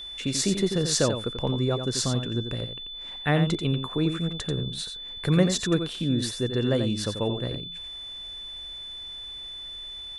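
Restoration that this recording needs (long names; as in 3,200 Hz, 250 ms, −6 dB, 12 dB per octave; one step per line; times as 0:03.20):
notch filter 3,500 Hz, Q 30
echo removal 88 ms −8 dB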